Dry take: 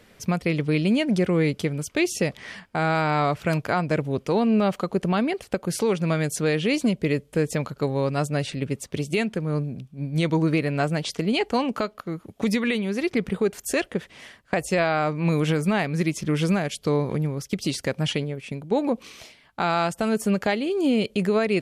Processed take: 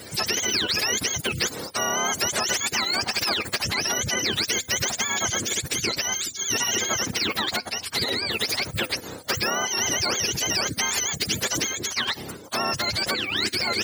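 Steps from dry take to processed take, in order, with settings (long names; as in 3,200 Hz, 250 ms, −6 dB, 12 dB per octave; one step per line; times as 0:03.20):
frequency axis turned over on the octave scale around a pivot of 960 Hz
bass and treble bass −7 dB, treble +8 dB
hum removal 251.8 Hz, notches 2
phase-vocoder stretch with locked phases 0.64×
every bin compressed towards the loudest bin 2 to 1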